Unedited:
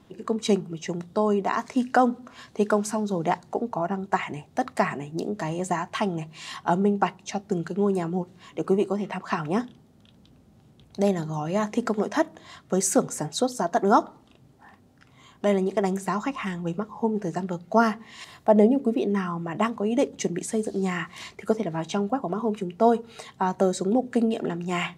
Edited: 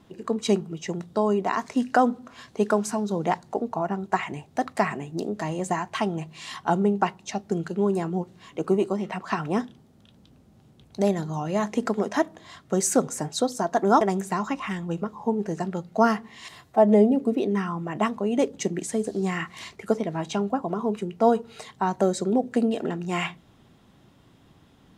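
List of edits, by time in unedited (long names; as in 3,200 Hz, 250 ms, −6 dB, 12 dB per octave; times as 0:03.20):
0:14.01–0:15.77: remove
0:18.38–0:18.71: time-stretch 1.5×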